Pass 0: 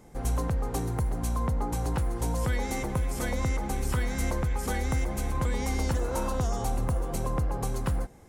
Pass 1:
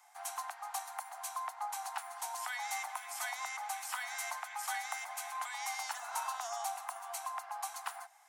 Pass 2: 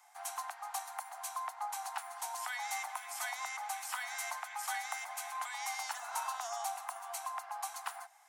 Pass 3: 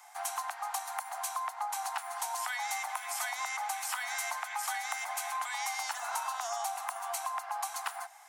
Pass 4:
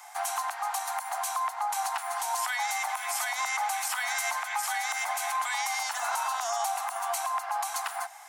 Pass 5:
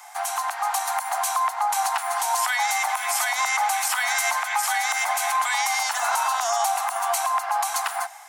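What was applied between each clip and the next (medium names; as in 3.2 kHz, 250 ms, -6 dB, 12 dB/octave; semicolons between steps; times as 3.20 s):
steep high-pass 690 Hz 96 dB/octave; trim -2 dB
no audible change
compression 4:1, threshold -41 dBFS, peak gain reduction 7.5 dB; trim +8.5 dB
peak limiter -27.5 dBFS, peak gain reduction 8 dB; trim +7 dB
level rider gain up to 3.5 dB; trim +3.5 dB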